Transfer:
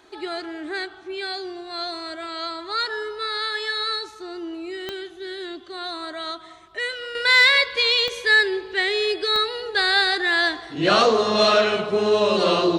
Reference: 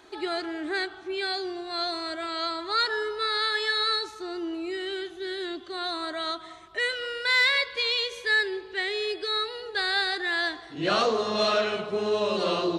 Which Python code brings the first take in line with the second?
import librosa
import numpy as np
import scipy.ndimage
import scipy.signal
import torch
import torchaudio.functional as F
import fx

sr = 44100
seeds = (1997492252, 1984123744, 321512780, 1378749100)

y = fx.fix_declick_ar(x, sr, threshold=10.0)
y = fx.fix_level(y, sr, at_s=7.15, step_db=-7.0)